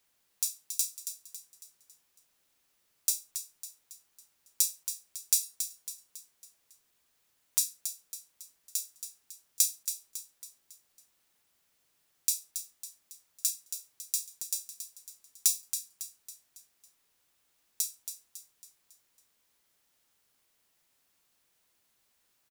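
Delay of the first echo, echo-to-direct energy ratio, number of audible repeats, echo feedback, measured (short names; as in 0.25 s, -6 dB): 0.276 s, -8.0 dB, 4, 46%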